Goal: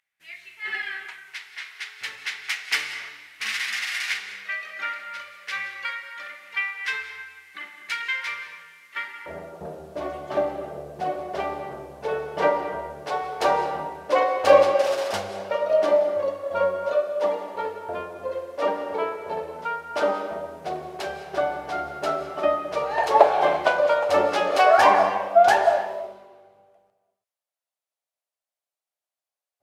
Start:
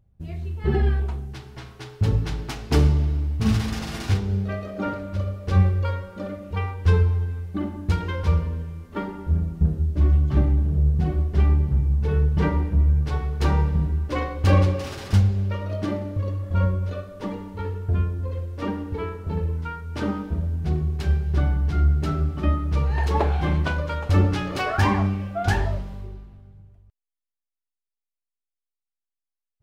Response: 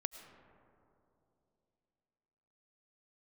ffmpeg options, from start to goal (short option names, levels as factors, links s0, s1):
-filter_complex "[0:a]asetnsamples=n=441:p=0,asendcmd='9.26 highpass f 620',highpass=f=2000:t=q:w=3.9[s0];[1:a]atrim=start_sample=2205,afade=t=out:st=0.25:d=0.01,atrim=end_sample=11466,asetrate=26019,aresample=44100[s1];[s0][s1]afir=irnorm=-1:irlink=0,volume=1.33"